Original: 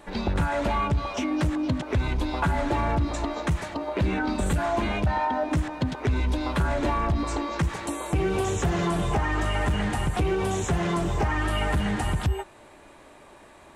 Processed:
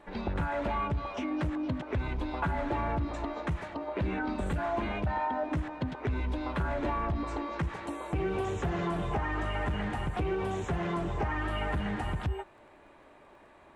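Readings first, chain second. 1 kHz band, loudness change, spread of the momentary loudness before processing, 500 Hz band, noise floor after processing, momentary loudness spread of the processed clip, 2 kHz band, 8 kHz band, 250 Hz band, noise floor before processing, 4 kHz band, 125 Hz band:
-5.5 dB, -6.5 dB, 3 LU, -5.5 dB, -57 dBFS, 4 LU, -6.0 dB, -17.5 dB, -6.5 dB, -50 dBFS, -10.0 dB, -7.5 dB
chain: crackle 19/s -43 dBFS; tone controls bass -2 dB, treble -13 dB; gain -5.5 dB

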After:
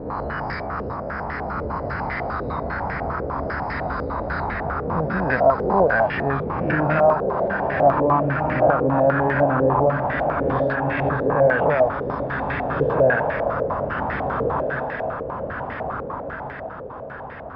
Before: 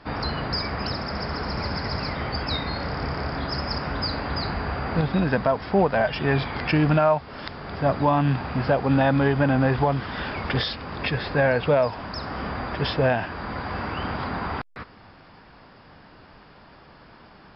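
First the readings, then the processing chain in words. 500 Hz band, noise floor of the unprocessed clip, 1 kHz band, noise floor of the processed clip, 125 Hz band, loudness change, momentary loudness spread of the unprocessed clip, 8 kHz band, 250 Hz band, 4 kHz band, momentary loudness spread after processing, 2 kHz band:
+5.5 dB, -50 dBFS, +5.5 dB, -33 dBFS, -1.0 dB, +2.5 dB, 10 LU, n/a, -0.5 dB, under -15 dB, 11 LU, +4.0 dB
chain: spectral swells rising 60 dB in 0.78 s; diffused feedback echo 1.656 s, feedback 44%, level -4 dB; stepped low-pass 10 Hz 490–1900 Hz; gain -4.5 dB

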